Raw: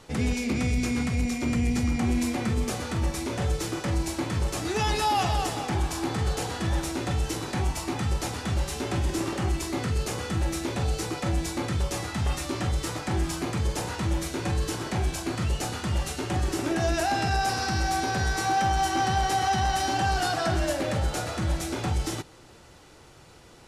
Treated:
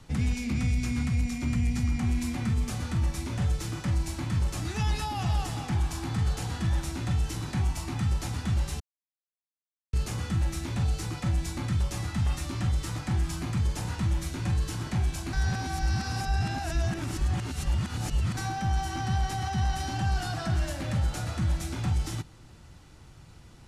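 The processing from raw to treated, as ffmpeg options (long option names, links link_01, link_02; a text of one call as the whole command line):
ffmpeg -i in.wav -filter_complex "[0:a]asplit=5[link_01][link_02][link_03][link_04][link_05];[link_01]atrim=end=8.8,asetpts=PTS-STARTPTS,afade=type=out:start_time=8.796:duration=0.004:curve=hsin[link_06];[link_02]atrim=start=8.8:end=9.93,asetpts=PTS-STARTPTS,volume=0[link_07];[link_03]atrim=start=9.93:end=15.332,asetpts=PTS-STARTPTS,afade=type=in:duration=0.004:curve=hsin[link_08];[link_04]atrim=start=15.328:end=18.372,asetpts=PTS-STARTPTS,areverse[link_09];[link_05]atrim=start=18.368[link_10];[link_06][link_07][link_08]concat=n=3:v=0:a=1[link_11];[link_11][link_09]acrossfade=duration=0.004:curve1=hsin:curve2=hsin[link_12];[link_12][link_10]acrossfade=duration=0.004:curve1=hsin:curve2=hsin,lowshelf=frequency=330:gain=11.5,acrossover=split=240|640[link_13][link_14][link_15];[link_13]acompressor=threshold=-19dB:ratio=4[link_16];[link_14]acompressor=threshold=-33dB:ratio=4[link_17];[link_15]acompressor=threshold=-27dB:ratio=4[link_18];[link_16][link_17][link_18]amix=inputs=3:normalize=0,equalizer=frequency=450:width_type=o:width=1.2:gain=-8.5,volume=-5dB" out.wav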